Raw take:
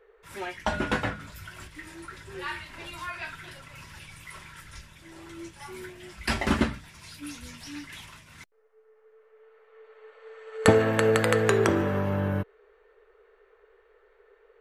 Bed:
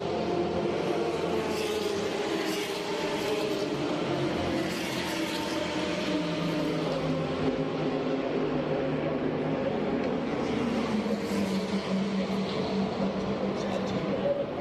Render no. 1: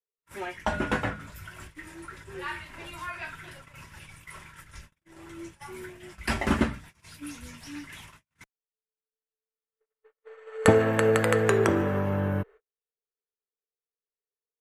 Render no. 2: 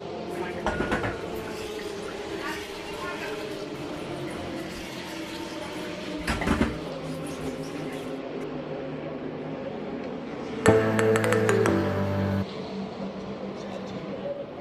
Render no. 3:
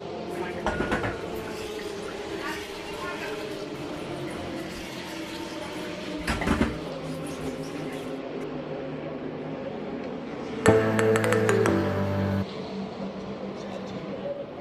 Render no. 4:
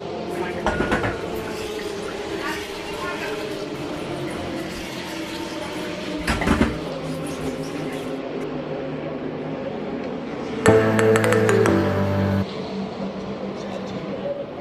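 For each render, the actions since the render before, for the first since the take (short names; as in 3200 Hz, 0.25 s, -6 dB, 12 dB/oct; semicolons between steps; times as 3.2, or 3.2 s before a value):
gate -46 dBFS, range -45 dB; bell 4200 Hz -5.5 dB 0.94 oct
add bed -5 dB
nothing audible
gain +5.5 dB; limiter -2 dBFS, peak gain reduction 2.5 dB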